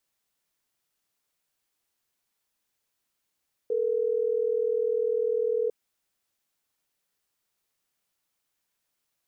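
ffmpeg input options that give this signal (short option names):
-f lavfi -i "aevalsrc='0.0501*(sin(2*PI*440*t)+sin(2*PI*480*t))*clip(min(mod(t,6),2-mod(t,6))/0.005,0,1)':d=3.12:s=44100"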